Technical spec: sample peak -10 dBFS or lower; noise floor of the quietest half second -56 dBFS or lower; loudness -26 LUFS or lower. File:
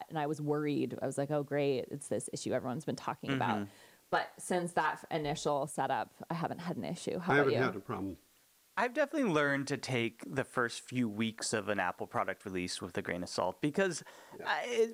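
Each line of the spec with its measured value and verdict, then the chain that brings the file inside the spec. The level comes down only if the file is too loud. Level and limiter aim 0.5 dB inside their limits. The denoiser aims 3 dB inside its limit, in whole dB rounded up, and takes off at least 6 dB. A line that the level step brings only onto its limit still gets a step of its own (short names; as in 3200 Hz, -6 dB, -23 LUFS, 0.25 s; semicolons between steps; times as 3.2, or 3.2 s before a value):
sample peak -17.0 dBFS: OK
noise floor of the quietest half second -68 dBFS: OK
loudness -35.0 LUFS: OK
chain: none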